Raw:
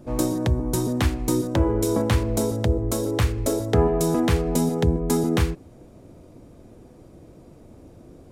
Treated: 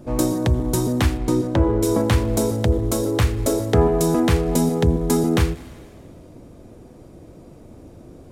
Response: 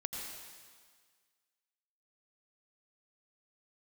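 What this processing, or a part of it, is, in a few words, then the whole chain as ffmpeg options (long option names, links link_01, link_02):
saturated reverb return: -filter_complex "[0:a]asplit=2[link_01][link_02];[1:a]atrim=start_sample=2205[link_03];[link_02][link_03]afir=irnorm=-1:irlink=0,asoftclip=type=tanh:threshold=-23dB,volume=-11.5dB[link_04];[link_01][link_04]amix=inputs=2:normalize=0,asplit=3[link_05][link_06][link_07];[link_05]afade=type=out:start_time=1.17:duration=0.02[link_08];[link_06]aemphasis=mode=reproduction:type=50kf,afade=type=in:start_time=1.17:duration=0.02,afade=type=out:start_time=1.82:duration=0.02[link_09];[link_07]afade=type=in:start_time=1.82:duration=0.02[link_10];[link_08][link_09][link_10]amix=inputs=3:normalize=0,volume=2dB"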